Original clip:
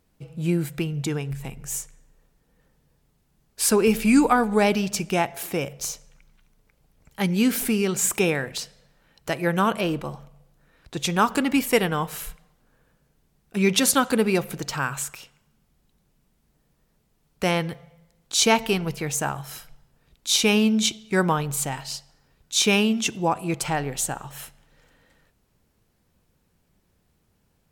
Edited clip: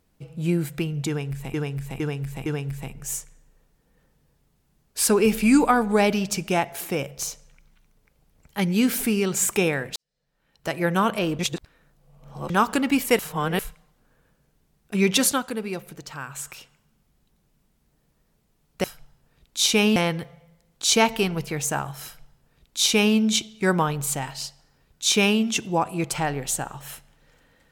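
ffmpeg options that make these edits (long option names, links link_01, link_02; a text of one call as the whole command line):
ffmpeg -i in.wav -filter_complex "[0:a]asplit=13[link_01][link_02][link_03][link_04][link_05][link_06][link_07][link_08][link_09][link_10][link_11][link_12][link_13];[link_01]atrim=end=1.542[link_14];[link_02]atrim=start=1.078:end=1.542[link_15];[link_03]atrim=start=1.078:end=1.542[link_16];[link_04]atrim=start=1.078:end=8.58,asetpts=PTS-STARTPTS,afade=type=out:start_time=7.498:duration=0.004:curve=hsin[link_17];[link_05]atrim=start=8.58:end=10.012,asetpts=PTS-STARTPTS,afade=type=in:duration=0.79:curve=qua[link_18];[link_06]atrim=start=10.008:end=11.122,asetpts=PTS-STARTPTS,areverse[link_19];[link_07]atrim=start=11.118:end=11.812[link_20];[link_08]atrim=start=11.808:end=12.212,asetpts=PTS-STARTPTS,areverse[link_21];[link_09]atrim=start=12.208:end=14.19,asetpts=PTS-STARTPTS,afade=type=out:start_time=1.652:duration=0.33:curve=qua:silence=0.354813[link_22];[link_10]atrim=start=14.19:end=14.82,asetpts=PTS-STARTPTS,volume=-9dB[link_23];[link_11]atrim=start=14.82:end=17.462,asetpts=PTS-STARTPTS,afade=type=in:duration=0.33:curve=qua:silence=0.354813[link_24];[link_12]atrim=start=19.538:end=20.662[link_25];[link_13]atrim=start=17.458[link_26];[link_14][link_15]acrossfade=duration=0.004:curve1=hsin:curve2=hsin[link_27];[link_27][link_16]acrossfade=duration=0.004:curve1=hsin:curve2=hsin[link_28];[link_17][link_18]concat=n=2:v=0:a=1[link_29];[link_28][link_29]acrossfade=duration=0.004:curve1=hsin:curve2=hsin[link_30];[link_30][link_19]acrossfade=duration=0.004:curve1=hsin:curve2=hsin[link_31];[link_31][link_20]acrossfade=duration=0.004:curve1=hsin:curve2=hsin[link_32];[link_32][link_21]acrossfade=duration=0.004:curve1=hsin:curve2=hsin[link_33];[link_22][link_23][link_24]concat=n=3:v=0:a=1[link_34];[link_33][link_34]acrossfade=duration=0.004:curve1=hsin:curve2=hsin[link_35];[link_35][link_25]acrossfade=duration=0.004:curve1=hsin:curve2=hsin[link_36];[link_36][link_26]acrossfade=duration=0.004:curve1=hsin:curve2=hsin" out.wav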